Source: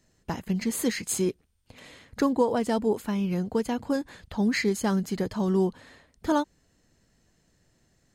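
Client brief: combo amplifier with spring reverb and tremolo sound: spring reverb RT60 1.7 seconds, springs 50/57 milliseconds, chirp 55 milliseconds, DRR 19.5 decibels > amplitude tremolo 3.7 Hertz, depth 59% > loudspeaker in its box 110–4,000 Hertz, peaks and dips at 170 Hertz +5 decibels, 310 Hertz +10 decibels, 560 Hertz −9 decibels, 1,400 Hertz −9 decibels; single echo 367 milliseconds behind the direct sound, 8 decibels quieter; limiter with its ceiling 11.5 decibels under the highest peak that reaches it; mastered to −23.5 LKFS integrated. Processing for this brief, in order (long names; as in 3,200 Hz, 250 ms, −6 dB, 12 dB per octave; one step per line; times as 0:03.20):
brickwall limiter −22 dBFS
single-tap delay 367 ms −8 dB
spring reverb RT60 1.7 s, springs 50/57 ms, chirp 55 ms, DRR 19.5 dB
amplitude tremolo 3.7 Hz, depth 59%
loudspeaker in its box 110–4,000 Hz, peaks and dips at 170 Hz +5 dB, 310 Hz +10 dB, 560 Hz −9 dB, 1,400 Hz −9 dB
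level +9.5 dB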